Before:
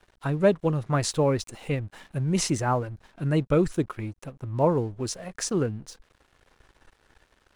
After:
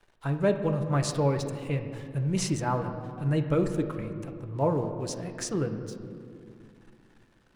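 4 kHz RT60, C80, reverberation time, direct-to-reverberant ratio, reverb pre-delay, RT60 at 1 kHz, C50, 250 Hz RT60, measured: 1.4 s, 9.0 dB, 2.3 s, 5.0 dB, 4 ms, 2.1 s, 8.0 dB, 3.3 s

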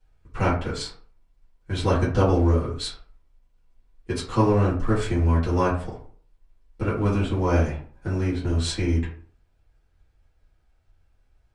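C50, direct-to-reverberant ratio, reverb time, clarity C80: 7.0 dB, -10.5 dB, 0.45 s, 11.5 dB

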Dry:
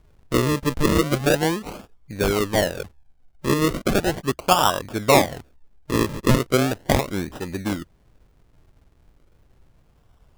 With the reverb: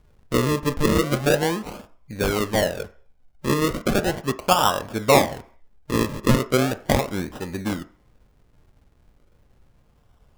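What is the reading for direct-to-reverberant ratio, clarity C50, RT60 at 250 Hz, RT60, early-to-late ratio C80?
10.0 dB, 17.0 dB, 0.40 s, 0.50 s, 22.0 dB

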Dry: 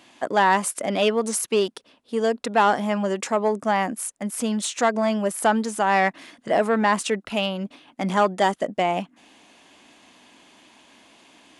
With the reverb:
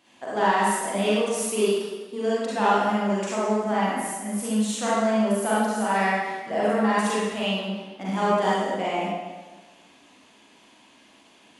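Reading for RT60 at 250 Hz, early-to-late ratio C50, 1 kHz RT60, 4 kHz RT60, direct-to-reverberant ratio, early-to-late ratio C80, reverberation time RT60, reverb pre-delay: 1.4 s, -5.0 dB, 1.3 s, 1.1 s, -8.5 dB, -0.5 dB, 1.3 s, 35 ms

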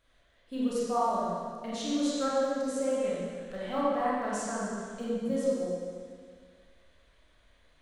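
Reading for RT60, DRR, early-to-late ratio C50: 1.9 s, -8.5 dB, -4.5 dB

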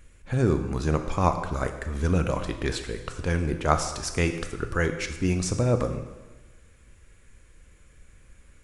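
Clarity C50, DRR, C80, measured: 9.0 dB, 6.5 dB, 10.5 dB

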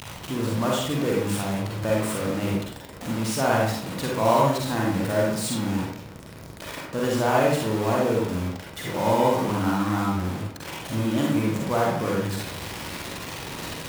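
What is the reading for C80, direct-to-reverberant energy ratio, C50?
4.5 dB, -3.5 dB, -0.5 dB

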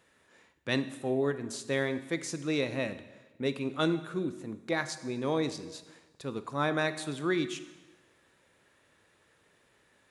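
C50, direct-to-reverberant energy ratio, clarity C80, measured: 13.0 dB, 11.0 dB, 15.0 dB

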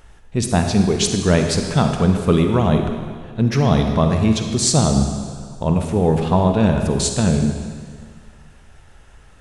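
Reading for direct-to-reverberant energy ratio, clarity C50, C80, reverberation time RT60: 4.5 dB, 5.0 dB, 6.0 dB, 1.8 s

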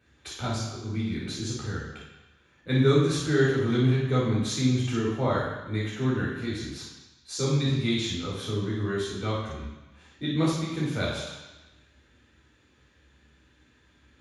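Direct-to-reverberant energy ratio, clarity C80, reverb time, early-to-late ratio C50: -6.0 dB, 4.0 dB, 1.0 s, 0.5 dB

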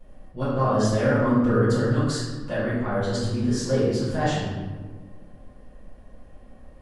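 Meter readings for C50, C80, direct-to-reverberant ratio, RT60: -2.0 dB, 1.5 dB, -12.5 dB, 1.5 s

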